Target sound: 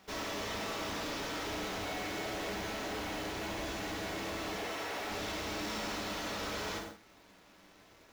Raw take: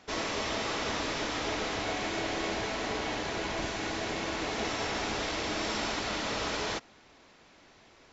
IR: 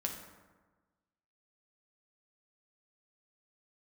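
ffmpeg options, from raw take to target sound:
-filter_complex "[0:a]asettb=1/sr,asplit=3[a][b][c];[a]atrim=end=4.584[d];[b]atrim=start=4.58:end=5.11,asetpts=PTS-STARTPTS,afade=t=in:d=0.004:c=qsin,afade=t=out:st=0.526:d=0.004:c=qsin,bass=f=250:g=-12,treble=f=4k:g=-5[e];[c]atrim=start=5.106[f];[d][e]acrossfade=d=0.004:c1=hsin:c2=qsin[g];[g][f]acrossfade=d=0.004:c1=qsin:c2=hsin[h];[1:a]atrim=start_sample=2205,afade=t=out:st=0.23:d=0.01,atrim=end_sample=10584[i];[h][i]afir=irnorm=-1:irlink=0,acrusher=bits=2:mode=log:mix=0:aa=0.000001,asoftclip=type=tanh:threshold=-28.5dB,volume=-4dB"

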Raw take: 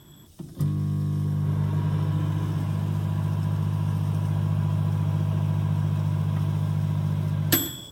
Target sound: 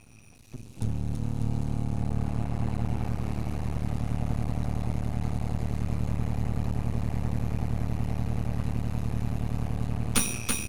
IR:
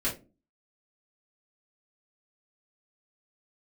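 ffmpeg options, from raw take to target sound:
-af "asetrate=32667,aresample=44100,aecho=1:1:330|594|805.2|974.2|1109:0.631|0.398|0.251|0.158|0.1,aeval=exprs='max(val(0),0)':c=same"

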